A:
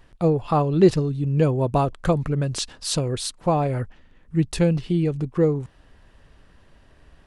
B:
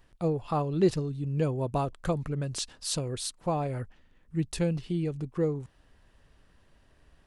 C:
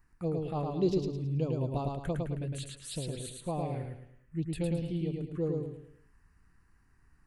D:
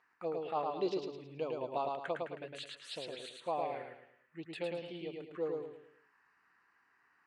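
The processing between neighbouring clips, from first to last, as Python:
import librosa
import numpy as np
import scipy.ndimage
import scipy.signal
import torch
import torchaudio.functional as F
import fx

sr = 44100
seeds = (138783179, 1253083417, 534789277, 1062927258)

y1 = fx.high_shelf(x, sr, hz=5500.0, db=5.5)
y1 = y1 * librosa.db_to_amplitude(-8.5)
y2 = fx.env_phaser(y1, sr, low_hz=570.0, high_hz=1800.0, full_db=-23.5)
y2 = fx.echo_feedback(y2, sr, ms=108, feedback_pct=37, wet_db=-3.0)
y2 = y2 * librosa.db_to_amplitude(-4.5)
y3 = fx.vibrato(y2, sr, rate_hz=0.46, depth_cents=18.0)
y3 = fx.bandpass_edges(y3, sr, low_hz=680.0, high_hz=3200.0)
y3 = y3 * librosa.db_to_amplitude(5.0)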